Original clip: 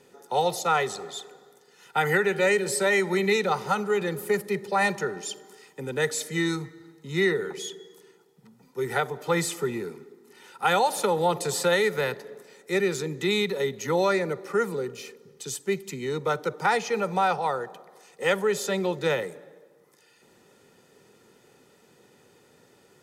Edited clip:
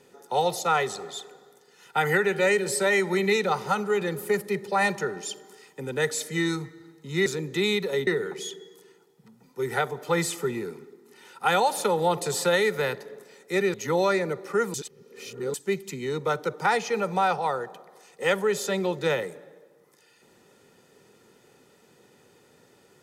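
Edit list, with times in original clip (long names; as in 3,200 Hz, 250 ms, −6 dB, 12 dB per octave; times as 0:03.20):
0:12.93–0:13.74: move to 0:07.26
0:14.74–0:15.54: reverse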